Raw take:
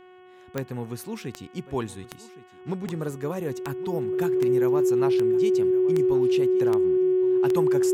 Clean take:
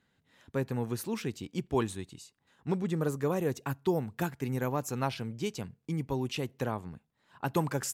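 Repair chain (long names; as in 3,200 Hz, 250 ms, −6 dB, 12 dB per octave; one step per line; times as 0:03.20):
click removal
hum removal 366.8 Hz, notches 9
notch filter 370 Hz, Q 30
echo removal 1,116 ms −18 dB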